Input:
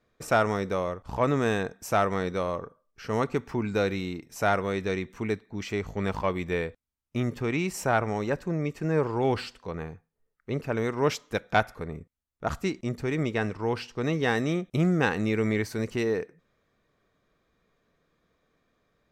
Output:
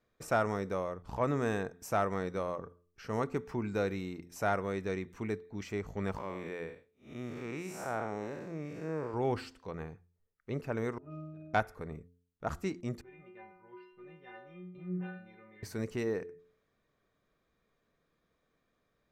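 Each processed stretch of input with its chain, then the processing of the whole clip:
6.18–9.14 time blur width 0.192 s + HPF 230 Hz 6 dB/oct
10.98–11.54 octave resonator D#, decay 0.78 s + flutter echo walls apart 8.8 m, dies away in 0.95 s
13.01–15.63 LPF 2800 Hz 24 dB/oct + metallic resonator 180 Hz, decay 0.77 s, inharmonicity 0.008
whole clip: de-hum 87.36 Hz, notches 5; dynamic EQ 3400 Hz, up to -6 dB, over -48 dBFS, Q 1.1; gain -6 dB

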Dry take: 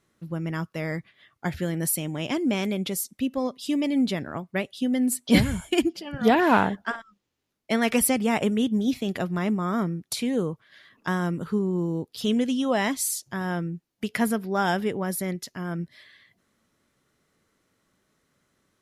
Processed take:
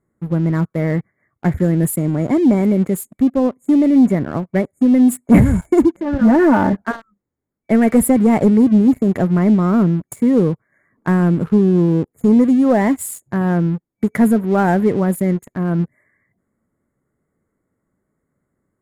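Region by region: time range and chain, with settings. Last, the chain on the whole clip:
5.97–6.73 air absorption 62 m + comb 3.4 ms, depth 91% + compressor 3:1, threshold -19 dBFS
whole clip: FFT band-reject 2300–6500 Hz; tilt shelf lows +6.5 dB, about 870 Hz; sample leveller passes 2

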